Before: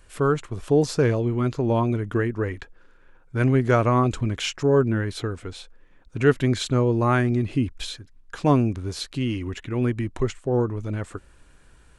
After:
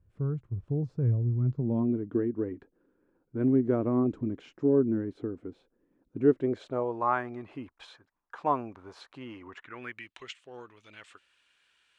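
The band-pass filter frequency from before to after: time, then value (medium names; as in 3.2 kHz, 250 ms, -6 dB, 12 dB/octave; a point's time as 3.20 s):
band-pass filter, Q 2.1
1.37 s 110 Hz
1.97 s 290 Hz
6.21 s 290 Hz
6.98 s 940 Hz
9.47 s 940 Hz
10.13 s 3 kHz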